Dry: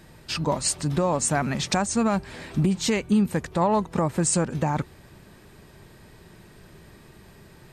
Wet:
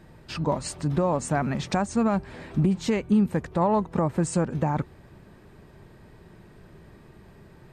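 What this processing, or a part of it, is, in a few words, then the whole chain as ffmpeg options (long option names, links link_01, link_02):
through cloth: -af "highshelf=frequency=2600:gain=-12"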